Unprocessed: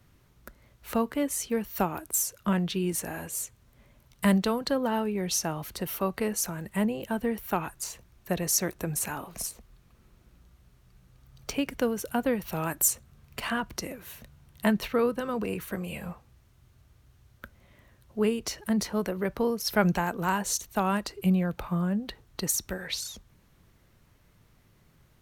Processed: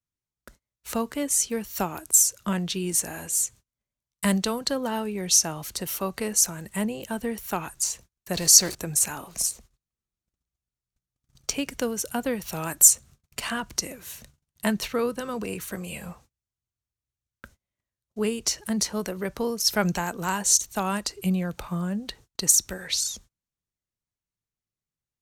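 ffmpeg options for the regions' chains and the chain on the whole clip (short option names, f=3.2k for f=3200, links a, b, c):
-filter_complex "[0:a]asettb=1/sr,asplit=3[a][b][c];[a]atrim=end=8.344[d];[b]atrim=start=8.34:end=8.75,asetpts=PTS-STARTPTS,afade=t=in:d=0.004:c=qsin,afade=t=out:st=0.406:d=0.004:c=qsin,aeval=exprs='val(0)+0.5*0.015*sgn(val(0))':c=same,equalizer=f=4.5k:t=o:w=0.25:g=12[e];[c]atrim=start=8.746[f];[d][e]acrossfade=d=0.004:c1=hsin:c2=qsin[g];[g][f]acrossfade=d=0.004:c1=qsin:c2=hsin,agate=range=-33dB:threshold=-51dB:ratio=16:detection=peak,equalizer=f=7.1k:w=0.71:g=12.5,volume=-1dB"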